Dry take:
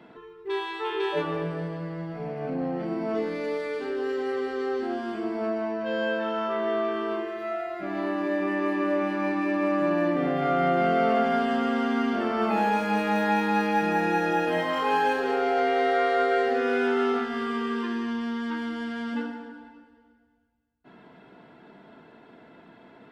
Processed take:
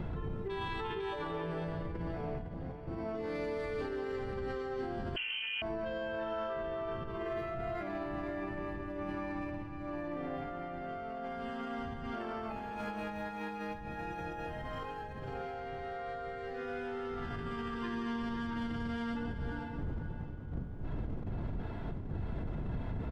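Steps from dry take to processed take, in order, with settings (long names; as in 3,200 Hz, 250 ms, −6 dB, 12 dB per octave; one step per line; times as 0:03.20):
wind on the microphone 130 Hz −28 dBFS
parametric band 860 Hz +2.5 dB 1.3 octaves
mains-hum notches 60/120/180/240 Hz
compressor whose output falls as the input rises −33 dBFS, ratio −1
brickwall limiter −26 dBFS, peak gain reduction 9 dB
single-tap delay 507 ms −9.5 dB
on a send at −15 dB: convolution reverb RT60 6.1 s, pre-delay 40 ms
0:05.16–0:05.62: on the sum: voice inversion scrambler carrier 3,100 Hz
level −4.5 dB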